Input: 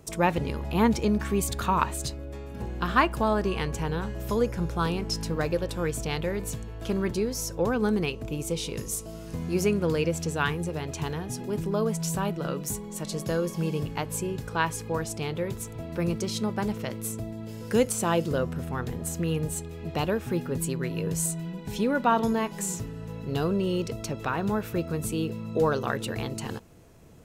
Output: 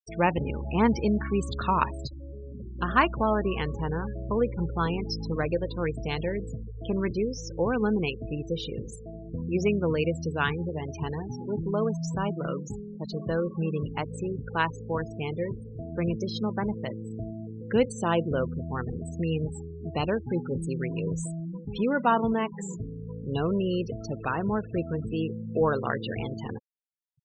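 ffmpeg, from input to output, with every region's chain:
-filter_complex "[0:a]asettb=1/sr,asplit=3[a][b][c];[a]atrim=end=2.074[d];[b]atrim=start=2.07:end=2.79,asetpts=PTS-STARTPTS,afade=t=in:d=0.004:c=qsin,afade=t=out:st=0.716:d=0.004:c=qsin,equalizer=f=1.5k:w=1.2:g=-11,acompressor=threshold=-34dB:ratio=12:attack=3.2:release=140:knee=1:detection=peak[e];[c]atrim=start=2.786[f];[d][e]acrossfade=d=0.004:c1=hsin:c2=qsin[g];[g][f]acrossfade=d=0.004:c1=qsin:c2=hsin,lowpass=3.8k,aemphasis=mode=production:type=cd,afftfilt=real='re*gte(hypot(re,im),0.0282)':imag='im*gte(hypot(re,im),0.0282)':win_size=1024:overlap=0.75"

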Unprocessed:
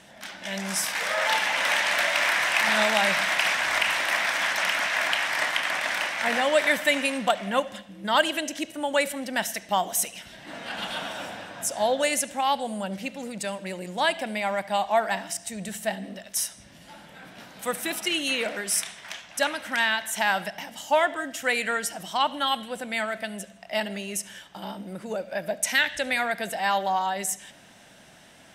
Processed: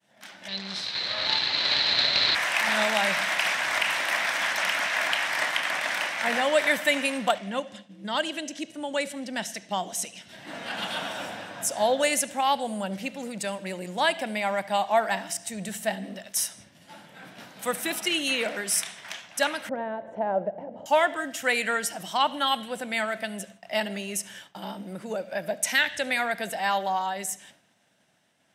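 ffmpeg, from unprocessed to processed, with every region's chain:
-filter_complex "[0:a]asettb=1/sr,asplit=3[a][b][c];[a]atrim=end=0.484[d];[b]atrim=start=0.48:end=2.35,asetpts=PTS-STARTPTS,afade=t=in:d=0.004:c=qsin,afade=t=out:st=1.866:d=0.004:c=qsin,lowshelf=f=210:g=10.5,aeval=exprs='max(val(0),0)':c=same,lowpass=f=4.1k:t=q:w=13[e];[c]atrim=start=2.346[f];[d][e]acrossfade=d=0.004:c1=hsin:c2=qsin[g];[g][f]acrossfade=d=0.004:c1=qsin:c2=hsin,asettb=1/sr,asplit=3[h][i][j];[h]atrim=end=7.384[k];[i]atrim=start=7.38:end=10.29,asetpts=PTS-STARTPTS,afade=t=in:d=0.004:c=qsin,afade=t=out:st=2.906:d=0.004:c=qsin,highpass=100,lowpass=7.3k,equalizer=f=1.2k:t=o:w=2.9:g=-7[l];[j]atrim=start=10.286[m];[k][l]acrossfade=d=0.004:c1=hsin:c2=qsin[n];[n][m]acrossfade=d=0.004:c1=qsin:c2=hsin,asettb=1/sr,asplit=3[o][p][q];[o]atrim=end=19.694[r];[p]atrim=start=19.69:end=20.86,asetpts=PTS-STARTPTS,afade=t=in:d=0.004:c=qsin,afade=t=out:st=1.166:d=0.004:c=qsin,lowpass=f=530:t=q:w=4,acompressor=mode=upward:threshold=-35dB:ratio=2.5:attack=3.2:release=140:knee=2.83:detection=peak[s];[q]atrim=start=20.856[t];[r][s]acrossfade=d=0.004:c1=hsin:c2=qsin[u];[u][t]acrossfade=d=0.004:c1=qsin:c2=hsin,agate=range=-33dB:threshold=-44dB:ratio=3:detection=peak,highpass=f=82:w=0.5412,highpass=f=82:w=1.3066,dynaudnorm=f=150:g=21:m=7dB,volume=-6dB"

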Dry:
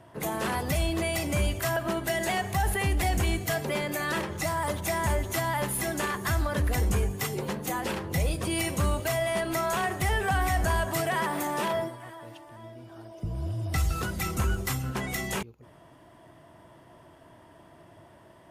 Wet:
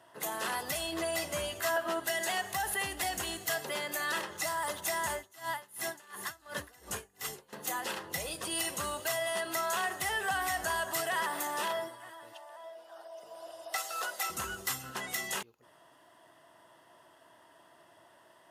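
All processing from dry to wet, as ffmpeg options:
-filter_complex "[0:a]asettb=1/sr,asplit=3[a][b][c];[a]atrim=end=0.914[d];[b]atrim=start=0.91:end=2,asetpts=PTS-STARTPTS,afade=t=in:d=0.004:c=qsin,afade=t=out:st=1.086:d=0.004:c=qsin,highshelf=f=4k:g=-5,asplit=2[e][f];[f]adelay=12,volume=-2.5dB[g];[e][g]amix=inputs=2:normalize=0,atrim=end_sample=48069[h];[c]atrim=start=1.996[i];[d][h]acrossfade=d=0.004:c1=hsin:c2=qsin[j];[j][i]acrossfade=d=0.004:c1=qsin:c2=hsin,asettb=1/sr,asplit=3[k][l][m];[k]atrim=end=5.154[n];[l]atrim=start=5.15:end=7.53,asetpts=PTS-STARTPTS,afade=t=in:d=0.004:c=qsin,afade=t=out:st=2.376:d=0.004:c=qsin,aecho=1:1:421:0.224,atrim=end_sample=104958,aeval=exprs='val(0)*pow(10,-25*(0.5-0.5*cos(2*PI*2.8*n/s))/20)':c=same[o];[m]atrim=start=7.526[p];[n][o]acrossfade=d=0.004:c1=hsin:c2=qsin[q];[q][p]acrossfade=d=0.004:c1=qsin:c2=hsin,asettb=1/sr,asplit=3[r][s][t];[r]atrim=end=12.334[u];[s]atrim=start=12.33:end=14.3,asetpts=PTS-STARTPTS,afade=t=in:d=0.004:c=qsin,afade=t=out:st=1.966:d=0.004:c=qsin,highpass=f=620:t=q:w=2.3,aeval=exprs='val(0)+0.000398*(sin(2*PI*60*n/s)+sin(2*PI*2*60*n/s)/2+sin(2*PI*3*60*n/s)/3+sin(2*PI*4*60*n/s)/4+sin(2*PI*5*60*n/s)/5)':c=same[v];[t]atrim=start=14.296[w];[u][v]acrossfade=d=0.004:c1=hsin:c2=qsin[x];[x][w]acrossfade=d=0.004:c1=qsin:c2=hsin,highpass=f=1.2k:p=1,bandreject=f=2.3k:w=6.5"

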